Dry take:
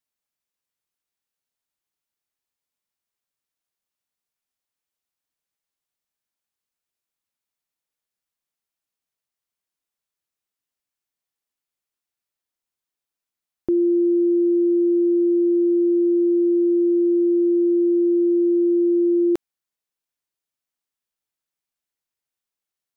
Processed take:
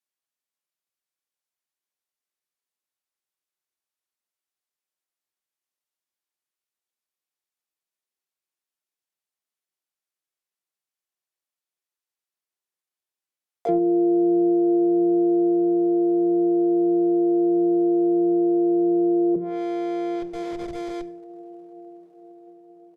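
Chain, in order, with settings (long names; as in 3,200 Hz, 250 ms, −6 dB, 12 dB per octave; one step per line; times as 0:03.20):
high-pass filter 240 Hz 12 dB per octave
feedback delay with all-pass diffusion 1,082 ms, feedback 52%, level −13 dB
in parallel at −9 dB: comparator with hysteresis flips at −37 dBFS
on the sum: pitch-shifted copies added −12 semitones −9 dB, +5 semitones 0 dB, +12 semitones −1 dB
on a send at −10 dB: convolution reverb RT60 0.70 s, pre-delay 3 ms
on the sum: treble cut that deepens with the level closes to 350 Hz, closed at −7.5 dBFS
level −7 dB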